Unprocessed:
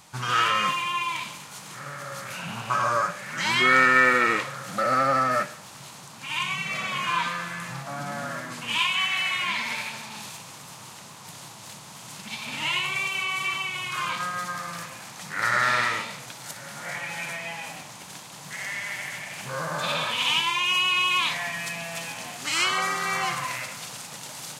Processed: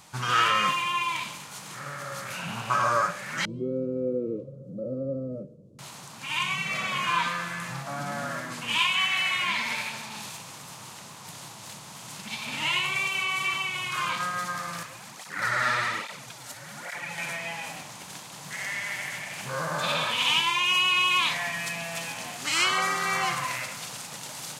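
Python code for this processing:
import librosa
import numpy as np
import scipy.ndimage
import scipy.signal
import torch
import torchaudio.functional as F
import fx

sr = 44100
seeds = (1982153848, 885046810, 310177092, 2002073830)

y = fx.ellip_lowpass(x, sr, hz=520.0, order=4, stop_db=40, at=(3.45, 5.79))
y = fx.flanger_cancel(y, sr, hz=1.2, depth_ms=6.2, at=(14.83, 17.18))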